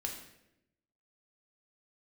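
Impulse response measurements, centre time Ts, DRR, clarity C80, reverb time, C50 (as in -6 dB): 29 ms, 0.5 dB, 8.5 dB, 0.85 s, 6.0 dB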